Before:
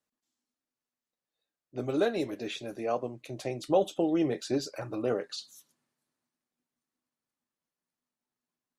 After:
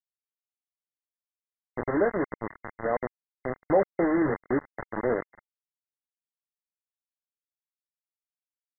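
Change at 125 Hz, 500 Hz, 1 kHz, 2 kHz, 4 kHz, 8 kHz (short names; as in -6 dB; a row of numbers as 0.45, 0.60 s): +1.5 dB, +2.5 dB, +4.5 dB, +7.5 dB, under -40 dB, under -30 dB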